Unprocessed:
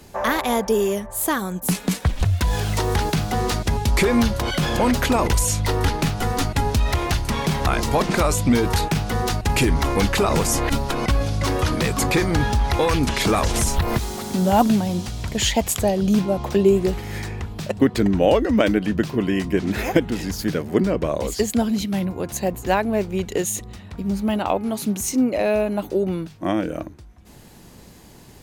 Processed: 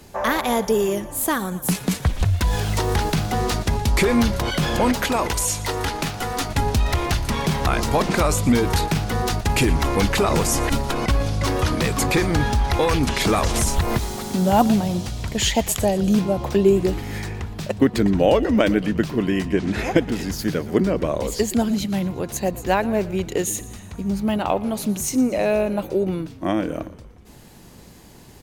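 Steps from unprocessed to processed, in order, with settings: 4.92–6.50 s: bass shelf 280 Hz -9 dB; 19.47–19.98 s: Bessel low-pass 8.7 kHz, order 4; on a send: frequency-shifting echo 118 ms, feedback 59%, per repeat -46 Hz, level -18 dB

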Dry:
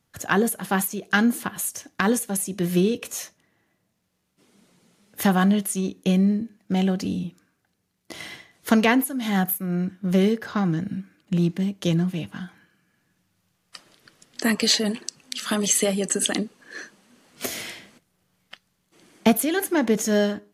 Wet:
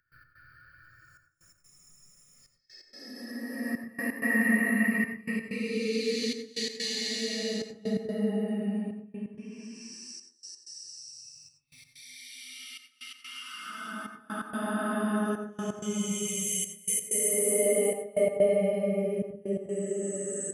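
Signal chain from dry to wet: expander on every frequency bin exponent 2; high-order bell 4.8 kHz -16 dB; in parallel at 0 dB: compression, threshold -34 dBFS, peak gain reduction 17.5 dB; on the sum: Paulstretch 9.9×, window 0.25 s, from 14.03 s; upward compressor, threshold -34 dBFS; trance gate ".x.xxxxxxx." 128 bpm -24 dB; on a send at -7 dB: reverberation RT60 0.35 s, pre-delay 77 ms

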